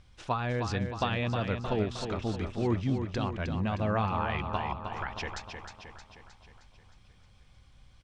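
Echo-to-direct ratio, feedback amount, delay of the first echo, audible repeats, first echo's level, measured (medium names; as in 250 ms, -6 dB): -5.5 dB, 55%, 311 ms, 6, -7.0 dB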